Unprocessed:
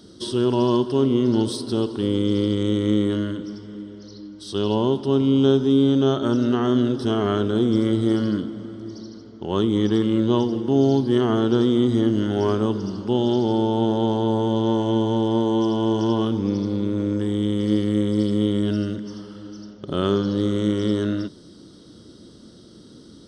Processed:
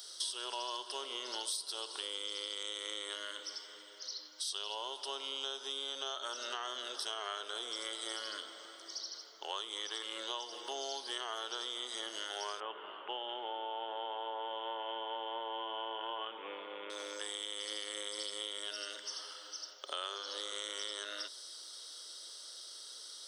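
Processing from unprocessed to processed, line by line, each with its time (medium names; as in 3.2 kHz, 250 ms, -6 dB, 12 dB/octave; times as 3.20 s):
12.60–16.90 s: steep low-pass 3.1 kHz 72 dB/octave
19.33–20.52 s: elliptic high-pass 240 Hz
whole clip: high-pass 560 Hz 24 dB/octave; tilt EQ +4.5 dB/octave; compression 5:1, threshold -34 dBFS; trim -3 dB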